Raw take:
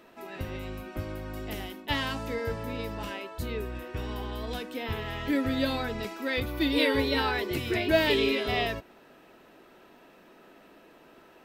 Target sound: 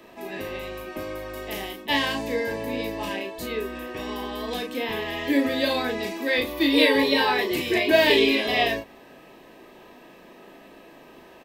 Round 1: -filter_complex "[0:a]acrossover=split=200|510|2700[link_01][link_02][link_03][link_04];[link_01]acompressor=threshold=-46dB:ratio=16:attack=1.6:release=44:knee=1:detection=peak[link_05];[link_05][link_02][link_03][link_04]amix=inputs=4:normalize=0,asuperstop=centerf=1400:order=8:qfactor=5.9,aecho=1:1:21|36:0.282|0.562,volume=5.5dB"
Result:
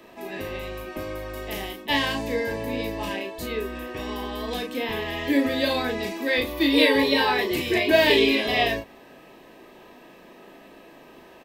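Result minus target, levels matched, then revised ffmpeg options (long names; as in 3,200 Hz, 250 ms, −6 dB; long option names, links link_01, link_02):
downward compressor: peak gain reduction −5.5 dB
-filter_complex "[0:a]acrossover=split=200|510|2700[link_01][link_02][link_03][link_04];[link_01]acompressor=threshold=-52dB:ratio=16:attack=1.6:release=44:knee=1:detection=peak[link_05];[link_05][link_02][link_03][link_04]amix=inputs=4:normalize=0,asuperstop=centerf=1400:order=8:qfactor=5.9,aecho=1:1:21|36:0.282|0.562,volume=5.5dB"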